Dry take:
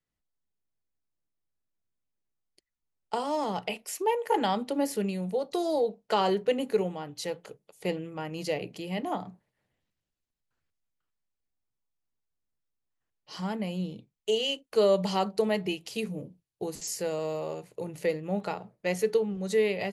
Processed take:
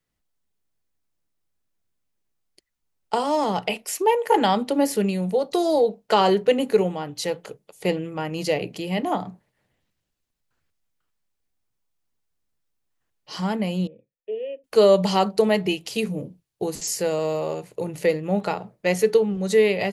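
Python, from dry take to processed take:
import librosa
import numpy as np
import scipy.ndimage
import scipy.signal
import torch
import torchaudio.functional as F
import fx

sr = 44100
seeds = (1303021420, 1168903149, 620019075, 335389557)

y = fx.formant_cascade(x, sr, vowel='e', at=(13.87, 14.64))
y = y * librosa.db_to_amplitude(7.5)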